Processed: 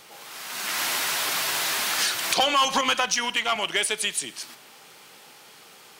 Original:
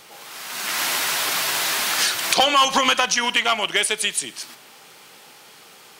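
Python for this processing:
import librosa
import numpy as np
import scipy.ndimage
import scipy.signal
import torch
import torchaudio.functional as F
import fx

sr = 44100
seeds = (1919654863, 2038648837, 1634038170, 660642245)

p1 = 10.0 ** (-19.0 / 20.0) * np.tanh(x / 10.0 ** (-19.0 / 20.0))
p2 = x + (p1 * librosa.db_to_amplitude(-5.0))
p3 = fx.band_widen(p2, sr, depth_pct=70, at=(2.81, 3.56))
y = p3 * librosa.db_to_amplitude(-6.5)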